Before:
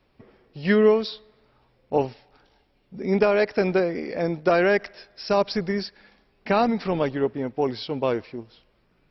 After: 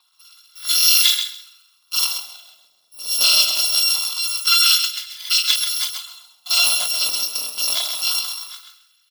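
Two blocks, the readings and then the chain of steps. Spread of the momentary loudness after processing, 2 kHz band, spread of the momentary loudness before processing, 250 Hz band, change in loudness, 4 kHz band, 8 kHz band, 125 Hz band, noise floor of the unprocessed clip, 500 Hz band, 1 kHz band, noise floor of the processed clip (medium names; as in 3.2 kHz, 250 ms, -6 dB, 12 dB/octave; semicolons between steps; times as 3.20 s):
15 LU, +4.0 dB, 14 LU, under -30 dB, +7.5 dB, +22.5 dB, no reading, under -30 dB, -65 dBFS, -24.0 dB, -6.0 dB, -61 dBFS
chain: bit-reversed sample order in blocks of 256 samples; peaking EQ 3.4 kHz +10.5 dB 0.49 oct; transient shaper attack -3 dB, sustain +11 dB; feedback delay 132 ms, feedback 18%, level -7 dB; LFO high-pass sine 0.24 Hz 510–1800 Hz; graphic EQ 125/250/500/1000/2000/4000 Hz +10/+6/-5/+8/-6/+12 dB; endings held to a fixed fall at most 150 dB/s; trim -2.5 dB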